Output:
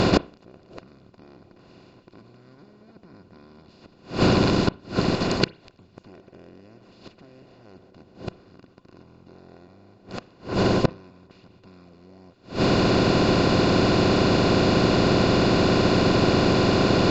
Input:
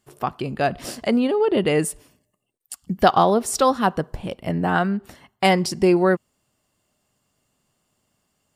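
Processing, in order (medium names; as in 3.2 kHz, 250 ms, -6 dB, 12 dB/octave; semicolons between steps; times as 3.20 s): spectral levelling over time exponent 0.2; inverted gate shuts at -4 dBFS, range -39 dB; speed mistake 15 ips tape played at 7.5 ips; on a send: reverberation RT60 0.40 s, pre-delay 31 ms, DRR 20 dB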